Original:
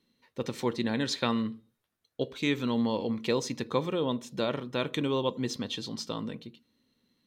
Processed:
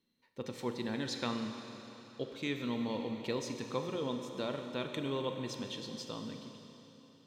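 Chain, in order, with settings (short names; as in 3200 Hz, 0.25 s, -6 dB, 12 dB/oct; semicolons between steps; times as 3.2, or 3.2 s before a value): Schroeder reverb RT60 3.6 s, combs from 29 ms, DRR 5 dB; gain -8 dB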